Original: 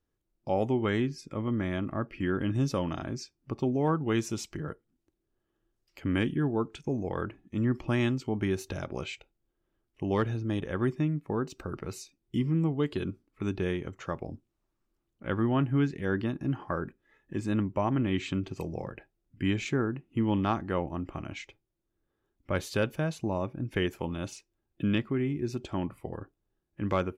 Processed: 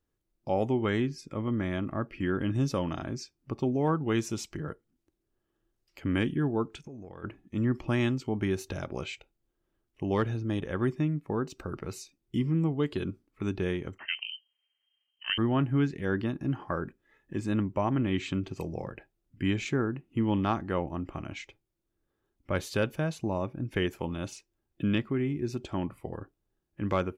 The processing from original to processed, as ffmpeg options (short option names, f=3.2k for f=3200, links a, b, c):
-filter_complex "[0:a]asplit=3[a][b][c];[a]afade=t=out:st=6.78:d=0.02[d];[b]acompressor=threshold=-41dB:ratio=8:attack=3.2:release=140:knee=1:detection=peak,afade=t=in:st=6.78:d=0.02,afade=t=out:st=7.23:d=0.02[e];[c]afade=t=in:st=7.23:d=0.02[f];[d][e][f]amix=inputs=3:normalize=0,asettb=1/sr,asplit=3[g][h][i];[g]atrim=end=13.984[j];[h]atrim=start=13.98:end=15.38,asetpts=PTS-STARTPTS,afade=t=in:d=0.004:c=qsin,afade=t=out:st=1.396:d=0.004:c=qsin,lowpass=f=2.7k:t=q:w=0.5098,lowpass=f=2.7k:t=q:w=0.6013,lowpass=f=2.7k:t=q:w=0.9,lowpass=f=2.7k:t=q:w=2.563,afreqshift=-3200[k];[i]atrim=start=15.376[l];[j][k]acrossfade=d=0.004:c1=hsin:c2=qsin[m];[m][l]acrossfade=d=0.004:c1=qsin:c2=hsin"